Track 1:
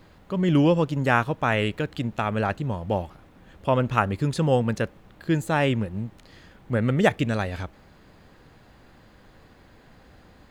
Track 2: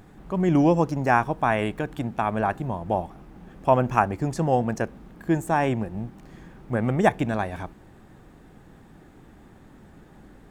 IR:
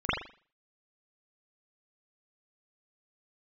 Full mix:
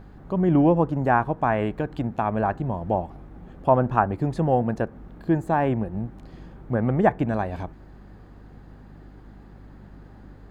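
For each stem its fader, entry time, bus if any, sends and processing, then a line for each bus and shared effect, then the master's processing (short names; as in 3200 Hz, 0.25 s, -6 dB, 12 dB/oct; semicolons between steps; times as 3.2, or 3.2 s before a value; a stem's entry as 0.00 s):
-8.0 dB, 0.00 s, no send, compressor, threshold -28 dBFS, peak gain reduction 14 dB
0.0 dB, 0.00 s, no send, inverse Chebyshev low-pass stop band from 4700 Hz, stop band 50 dB; hum 50 Hz, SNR 21 dB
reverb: off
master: dry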